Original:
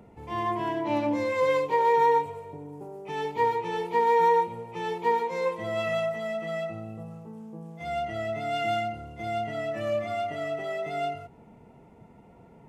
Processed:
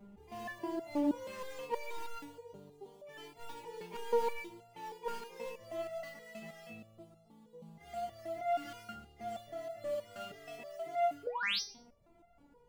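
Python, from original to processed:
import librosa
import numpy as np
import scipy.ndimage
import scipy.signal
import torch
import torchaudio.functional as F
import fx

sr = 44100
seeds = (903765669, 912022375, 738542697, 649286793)

p1 = fx.low_shelf(x, sr, hz=66.0, db=11.0)
p2 = fx.sample_hold(p1, sr, seeds[0], rate_hz=3800.0, jitter_pct=20)
p3 = p1 + F.gain(torch.from_numpy(p2), -12.0).numpy()
p4 = fx.spec_paint(p3, sr, seeds[1], shape='rise', start_s=11.23, length_s=0.38, low_hz=390.0, high_hz=6300.0, level_db=-24.0)
p5 = 10.0 ** (-18.0 / 20.0) * np.tanh(p4 / 10.0 ** (-18.0 / 20.0))
p6 = p5 + fx.echo_feedback(p5, sr, ms=104, feedback_pct=24, wet_db=-20, dry=0)
p7 = fx.resonator_held(p6, sr, hz=6.3, low_hz=200.0, high_hz=690.0)
y = F.gain(torch.from_numpy(p7), 4.0).numpy()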